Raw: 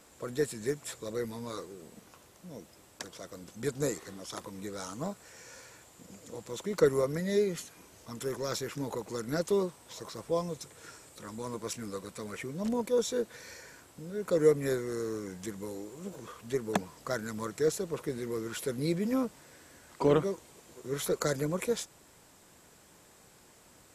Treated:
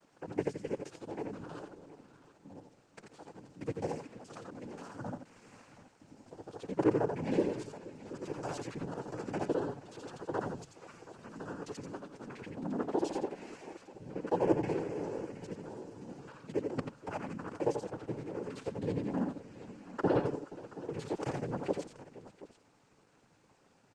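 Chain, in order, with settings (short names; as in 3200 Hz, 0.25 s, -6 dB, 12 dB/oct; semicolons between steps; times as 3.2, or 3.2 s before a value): local time reversal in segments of 53 ms; high shelf 3200 Hz -11 dB; noise vocoder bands 8; on a send: tapped delay 86/93/475/727 ms -7.5/-14/-18.5/-16 dB; on the sum: gain -3.5 dB; Opus 20 kbps 48000 Hz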